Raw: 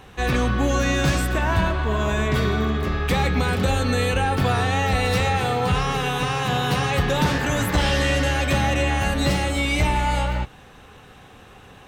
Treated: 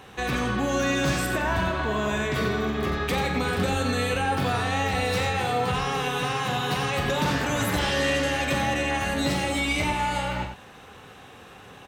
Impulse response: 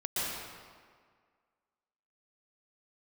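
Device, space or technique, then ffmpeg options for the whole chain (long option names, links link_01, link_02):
clipper into limiter: -af "highpass=frequency=150:poles=1,asoftclip=type=hard:threshold=-13dB,alimiter=limit=-17dB:level=0:latency=1:release=142,aecho=1:1:43.73|90.38:0.355|0.398"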